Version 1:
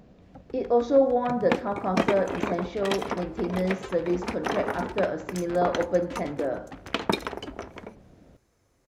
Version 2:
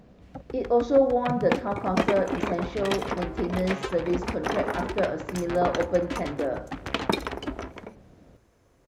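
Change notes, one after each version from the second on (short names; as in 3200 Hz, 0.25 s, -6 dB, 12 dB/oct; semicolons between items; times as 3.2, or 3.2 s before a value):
first sound +7.5 dB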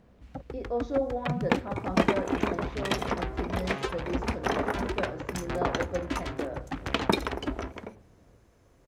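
speech -9.0 dB; master: add low shelf 120 Hz +3.5 dB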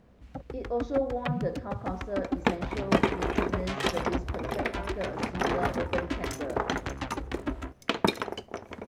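second sound: entry +0.95 s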